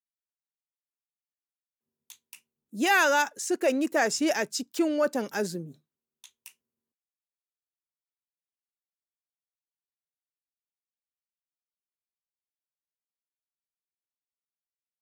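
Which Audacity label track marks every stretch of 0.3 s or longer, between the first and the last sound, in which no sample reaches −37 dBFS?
2.350000	2.740000	silence
5.710000	6.240000	silence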